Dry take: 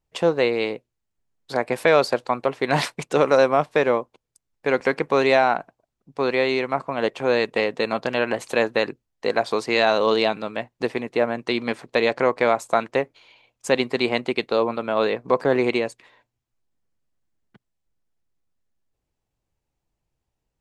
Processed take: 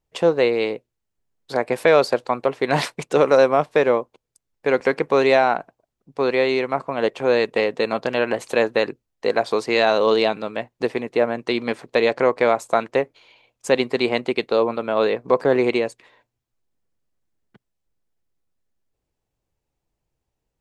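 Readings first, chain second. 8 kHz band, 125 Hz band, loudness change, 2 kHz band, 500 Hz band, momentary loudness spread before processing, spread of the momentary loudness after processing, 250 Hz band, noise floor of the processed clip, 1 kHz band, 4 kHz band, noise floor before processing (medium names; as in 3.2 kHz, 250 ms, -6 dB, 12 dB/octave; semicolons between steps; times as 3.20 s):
no reading, 0.0 dB, +1.5 dB, 0.0 dB, +2.5 dB, 10 LU, 10 LU, +1.0 dB, -80 dBFS, +0.5 dB, 0.0 dB, -81 dBFS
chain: peaking EQ 450 Hz +3 dB 0.94 oct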